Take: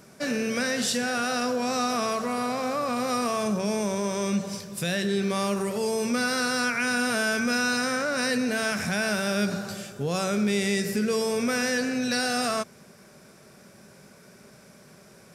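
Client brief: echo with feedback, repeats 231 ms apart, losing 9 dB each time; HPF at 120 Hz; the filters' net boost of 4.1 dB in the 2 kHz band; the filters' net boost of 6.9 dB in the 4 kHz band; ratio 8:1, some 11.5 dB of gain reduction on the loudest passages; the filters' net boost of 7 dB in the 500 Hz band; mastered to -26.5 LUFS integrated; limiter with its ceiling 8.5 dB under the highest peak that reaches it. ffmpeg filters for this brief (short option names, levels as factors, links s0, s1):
-af "highpass=120,equalizer=f=500:t=o:g=8,equalizer=f=2000:t=o:g=3.5,equalizer=f=4000:t=o:g=8,acompressor=threshold=0.0398:ratio=8,alimiter=level_in=1.26:limit=0.0631:level=0:latency=1,volume=0.794,aecho=1:1:231|462|693|924:0.355|0.124|0.0435|0.0152,volume=2.51"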